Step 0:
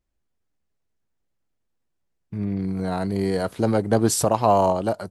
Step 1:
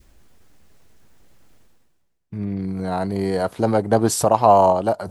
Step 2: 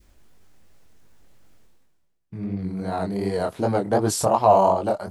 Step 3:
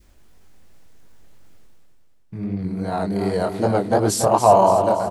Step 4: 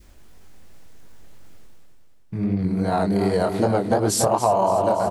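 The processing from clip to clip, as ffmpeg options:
-af "adynamicequalizer=threshold=0.0251:dfrequency=800:dqfactor=1.1:tfrequency=800:tqfactor=1.1:attack=5:release=100:ratio=0.375:range=3:mode=boostabove:tftype=bell,areverse,acompressor=mode=upward:threshold=-29dB:ratio=2.5,areverse"
-af "flanger=delay=19:depth=6.9:speed=2.7"
-af "aecho=1:1:283|566|849|1132|1415:0.376|0.177|0.083|0.039|0.0183,volume=2.5dB"
-af "acompressor=threshold=-20dB:ratio=6,volume=4dB"

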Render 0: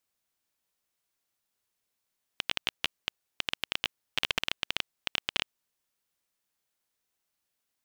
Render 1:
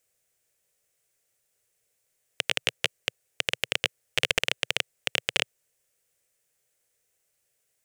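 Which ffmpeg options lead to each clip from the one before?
-af "equalizer=f=125:t=o:w=1:g=6,equalizer=f=250:t=o:w=1:g=-10,equalizer=f=500:t=o:w=1:g=11,equalizer=f=1k:t=o:w=1:g=-9,equalizer=f=2k:t=o:w=1:g=4,equalizer=f=4k:t=o:w=1:g=-5,equalizer=f=8k:t=o:w=1:g=7,volume=5.5dB"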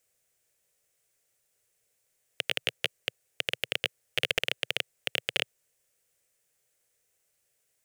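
-af "asoftclip=type=tanh:threshold=-9.5dB"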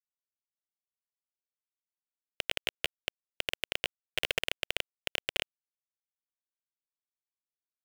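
-af "acrusher=bits=4:mix=0:aa=0.000001,volume=-3.5dB"

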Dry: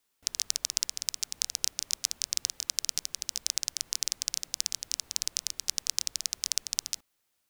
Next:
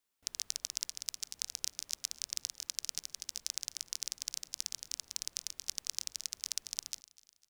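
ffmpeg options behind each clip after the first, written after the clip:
-af "aecho=1:1:251|502|753:0.0944|0.0415|0.0183,volume=-7.5dB"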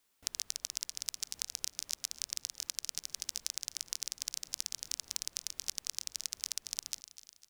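-af "acompressor=threshold=-40dB:ratio=6,volume=8.5dB"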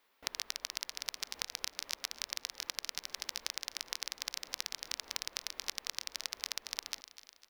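-af "equalizer=f=125:t=o:w=1:g=-11,equalizer=f=250:t=o:w=1:g=4,equalizer=f=500:t=o:w=1:g=8,equalizer=f=1k:t=o:w=1:g=8,equalizer=f=2k:t=o:w=1:g=7,equalizer=f=4k:t=o:w=1:g=4,equalizer=f=8k:t=o:w=1:g=-10"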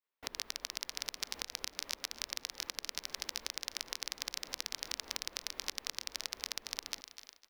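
-filter_complex "[0:a]agate=range=-33dB:threshold=-57dB:ratio=3:detection=peak,acrossover=split=420[a][b];[b]alimiter=limit=-19.5dB:level=0:latency=1:release=477[c];[a][c]amix=inputs=2:normalize=0,volume=5.5dB"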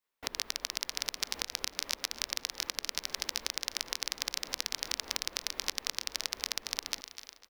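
-filter_complex "[0:a]asplit=2[a][b];[b]adelay=1166,volume=-20dB,highshelf=f=4k:g=-26.2[c];[a][c]amix=inputs=2:normalize=0,volume=5dB"

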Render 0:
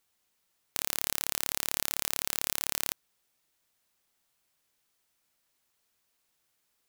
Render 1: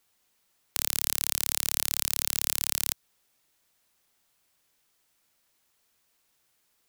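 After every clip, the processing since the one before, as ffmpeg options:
-filter_complex "[0:a]acrossover=split=140|3000[a][b][c];[b]acompressor=threshold=-41dB:ratio=6[d];[a][d][c]amix=inputs=3:normalize=0,volume=4.5dB"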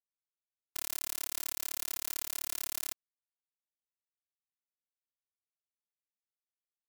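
-af "afftfilt=real='hypot(re,im)*cos(PI*b)':imag='0':win_size=512:overlap=0.75,acrusher=bits=4:mix=0:aa=0.5,volume=-6dB"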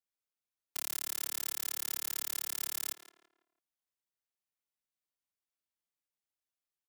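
-filter_complex "[0:a]acrossover=split=160[a][b];[a]alimiter=level_in=35dB:limit=-24dB:level=0:latency=1,volume=-35dB[c];[b]asplit=2[d][e];[e]adelay=166,lowpass=f=2.2k:p=1,volume=-9dB,asplit=2[f][g];[g]adelay=166,lowpass=f=2.2k:p=1,volume=0.39,asplit=2[h][i];[i]adelay=166,lowpass=f=2.2k:p=1,volume=0.39,asplit=2[j][k];[k]adelay=166,lowpass=f=2.2k:p=1,volume=0.39[l];[d][f][h][j][l]amix=inputs=5:normalize=0[m];[c][m]amix=inputs=2:normalize=0"

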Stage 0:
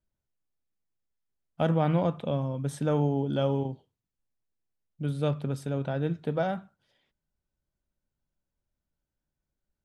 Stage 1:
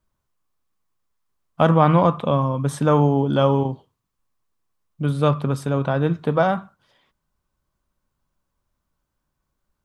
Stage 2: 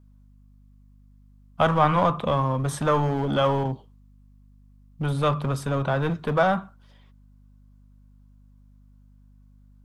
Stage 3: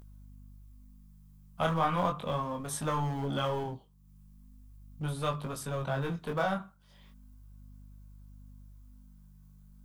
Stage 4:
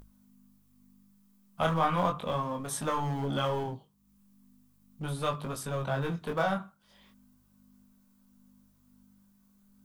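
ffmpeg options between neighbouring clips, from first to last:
-af "equalizer=f=1.1k:t=o:w=0.44:g=13,volume=8.5dB"
-filter_complex "[0:a]acrossover=split=660|840[a][b][c];[a]volume=23dB,asoftclip=hard,volume=-23dB[d];[d][b][c]amix=inputs=3:normalize=0,aeval=exprs='val(0)+0.00251*(sin(2*PI*50*n/s)+sin(2*PI*2*50*n/s)/2+sin(2*PI*3*50*n/s)/3+sin(2*PI*4*50*n/s)/4+sin(2*PI*5*50*n/s)/5)':c=same"
-af "aemphasis=mode=production:type=50kf,acompressor=mode=upward:threshold=-35dB:ratio=2.5,flanger=delay=18.5:depth=7.8:speed=0.37,volume=-6.5dB"
-af "bandreject=f=50:t=h:w=6,bandreject=f=100:t=h:w=6,bandreject=f=150:t=h:w=6,volume=1.5dB"

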